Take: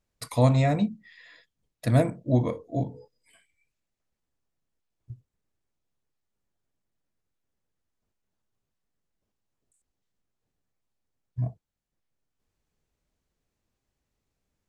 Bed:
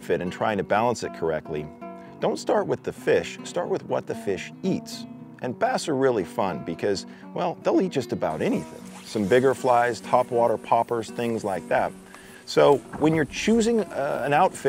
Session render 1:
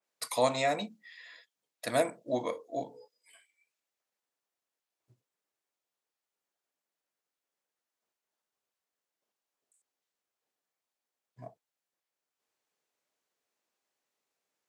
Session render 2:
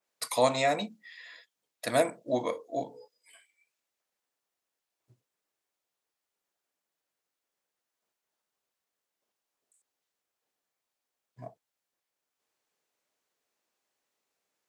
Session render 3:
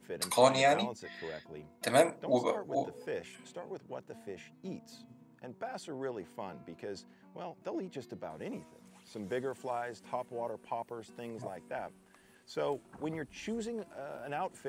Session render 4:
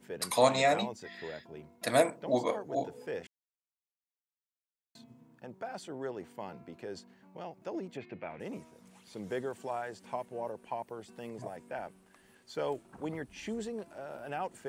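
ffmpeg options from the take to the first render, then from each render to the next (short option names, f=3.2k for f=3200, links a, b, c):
-af "highpass=510,adynamicequalizer=threshold=0.00355:dfrequency=2900:dqfactor=0.7:tfrequency=2900:tqfactor=0.7:attack=5:release=100:ratio=0.375:range=2.5:mode=boostabove:tftype=highshelf"
-af "volume=2.5dB"
-filter_complex "[1:a]volume=-17.5dB[a];[0:a][a]amix=inputs=2:normalize=0"
-filter_complex "[0:a]asettb=1/sr,asplit=3[a][b][c];[a]atrim=end=7.974[d];[b]atrim=start=7.97:end=8.4,asetpts=PTS-STARTPTS,afade=t=in:d=0.004:c=qsin,afade=t=out:st=0.426:d=0.004:c=qsin,lowpass=f=2.4k:t=q:w=6[e];[c]atrim=start=8.396[f];[d][e]acrossfade=d=0.004:c1=hsin:c2=qsin[g];[g][f]acrossfade=d=0.004:c1=qsin:c2=hsin,asplit=3[h][i][j];[h]atrim=end=3.27,asetpts=PTS-STARTPTS,afade=t=out:st=3.266:d=0.004:c=hsin[k];[i]atrim=start=3.27:end=4.95,asetpts=PTS-STARTPTS,volume=0[l];[j]atrim=start=4.95,asetpts=PTS-STARTPTS,afade=t=in:d=0.004:c=hsin[m];[k][l][m]concat=n=3:v=0:a=1"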